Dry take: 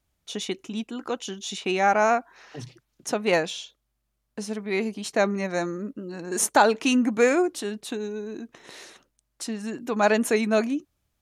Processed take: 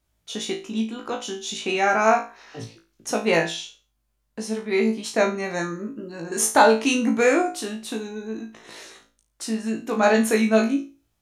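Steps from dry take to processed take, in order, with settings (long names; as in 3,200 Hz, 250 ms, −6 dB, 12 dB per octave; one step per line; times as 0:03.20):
flutter between parallel walls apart 3.1 metres, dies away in 0.32 s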